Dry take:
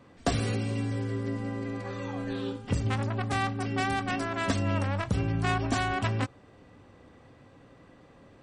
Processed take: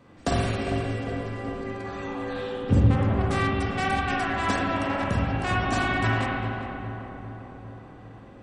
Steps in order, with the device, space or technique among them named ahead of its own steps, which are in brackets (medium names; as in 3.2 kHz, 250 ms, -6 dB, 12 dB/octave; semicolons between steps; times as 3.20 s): 2.63–3.22 s: tilt shelf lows +7 dB, about 880 Hz; dub delay into a spring reverb (filtered feedback delay 401 ms, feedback 66%, low-pass 1.5 kHz, level -7 dB; spring tank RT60 1.7 s, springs 44/57 ms, chirp 80 ms, DRR -3 dB)